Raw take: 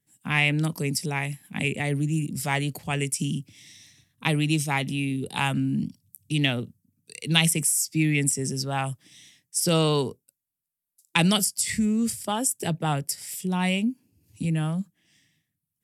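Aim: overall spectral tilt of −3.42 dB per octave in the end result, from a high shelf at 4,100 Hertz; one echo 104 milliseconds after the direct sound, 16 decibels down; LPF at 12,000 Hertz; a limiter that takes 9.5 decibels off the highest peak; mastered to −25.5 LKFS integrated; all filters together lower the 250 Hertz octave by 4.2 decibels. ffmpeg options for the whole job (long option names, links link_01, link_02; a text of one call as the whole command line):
ffmpeg -i in.wav -af "lowpass=12000,equalizer=frequency=250:width_type=o:gain=-6.5,highshelf=frequency=4100:gain=3,alimiter=limit=-13dB:level=0:latency=1,aecho=1:1:104:0.158,volume=1.5dB" out.wav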